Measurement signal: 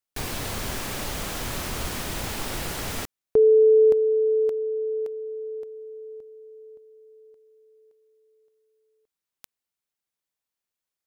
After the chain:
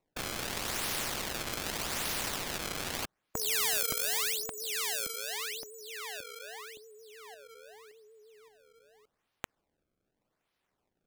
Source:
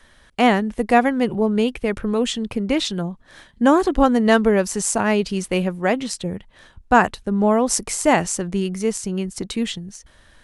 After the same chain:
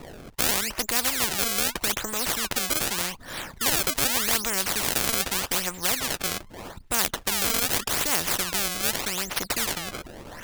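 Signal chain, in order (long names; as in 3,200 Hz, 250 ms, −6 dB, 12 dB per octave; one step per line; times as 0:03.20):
pitch vibrato 6.3 Hz 67 cents
sample-and-hold swept by an LFO 27×, swing 160% 0.83 Hz
every bin compressed towards the loudest bin 4 to 1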